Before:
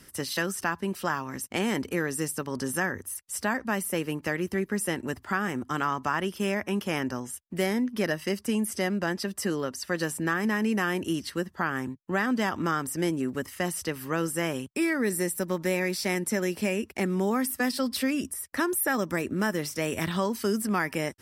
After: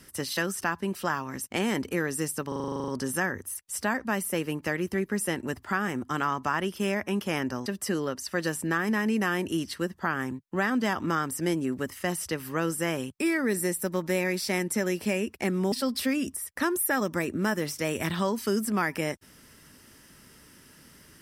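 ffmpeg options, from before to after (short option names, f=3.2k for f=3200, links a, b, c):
-filter_complex "[0:a]asplit=13[a][b][c][d][e][f][g][h][i][j][k][l][m];[a]atrim=end=2.522[n];[b]atrim=start=2.478:end=2.522[o];[c]atrim=start=2.478:end=2.522[p];[d]atrim=start=2.478:end=2.522[q];[e]atrim=start=2.478:end=2.522[r];[f]atrim=start=2.478:end=2.522[s];[g]atrim=start=2.478:end=2.522[t];[h]atrim=start=2.478:end=2.522[u];[i]atrim=start=2.478:end=2.522[v];[j]atrim=start=2.478:end=2.522[w];[k]atrim=start=2.478:end=7.262[x];[l]atrim=start=9.218:end=17.282[y];[m]atrim=start=17.688[z];[n][o]acrossfade=d=0.004:c1=hsin:c2=hsin[aa];[aa][p]acrossfade=d=0.004:c1=hsin:c2=hsin[ab];[ab][q]acrossfade=d=0.004:c1=hsin:c2=hsin[ac];[ac][r]acrossfade=d=0.004:c1=hsin:c2=hsin[ad];[ad][s]acrossfade=d=0.004:c1=hsin:c2=hsin[ae];[ae][t]acrossfade=d=0.004:c1=hsin:c2=hsin[af];[af][u]acrossfade=d=0.004:c1=hsin:c2=hsin[ag];[ag][v]acrossfade=d=0.004:c1=hsin:c2=hsin[ah];[ah][w]acrossfade=d=0.004:c1=hsin:c2=hsin[ai];[ai][x]acrossfade=d=0.004:c1=hsin:c2=hsin[aj];[aj][y]acrossfade=d=0.004:c1=hsin:c2=hsin[ak];[ak][z]acrossfade=d=0.004:c1=hsin:c2=hsin"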